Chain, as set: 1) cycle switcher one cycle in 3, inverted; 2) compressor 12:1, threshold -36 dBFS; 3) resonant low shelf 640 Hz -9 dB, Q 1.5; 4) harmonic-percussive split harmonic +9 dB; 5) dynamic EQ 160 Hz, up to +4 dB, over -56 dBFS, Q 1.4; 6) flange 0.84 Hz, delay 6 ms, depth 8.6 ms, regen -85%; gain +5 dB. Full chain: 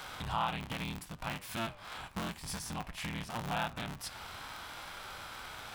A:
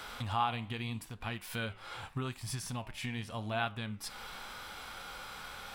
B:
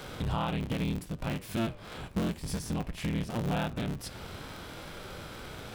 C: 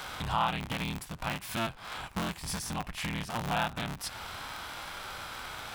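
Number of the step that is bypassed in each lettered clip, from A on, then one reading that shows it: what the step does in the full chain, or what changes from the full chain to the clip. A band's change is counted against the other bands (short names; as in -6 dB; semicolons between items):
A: 1, momentary loudness spread change +2 LU; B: 3, 250 Hz band +10.0 dB; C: 6, loudness change +4.5 LU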